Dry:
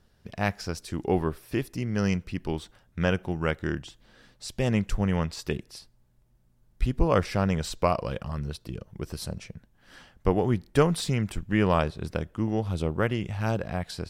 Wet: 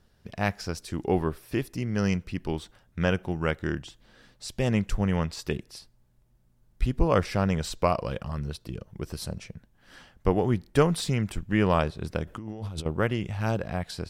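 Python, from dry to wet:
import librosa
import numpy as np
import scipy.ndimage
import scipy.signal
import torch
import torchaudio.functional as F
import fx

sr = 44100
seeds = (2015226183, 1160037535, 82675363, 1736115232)

y = fx.over_compress(x, sr, threshold_db=-36.0, ratio=-1.0, at=(12.27, 12.86))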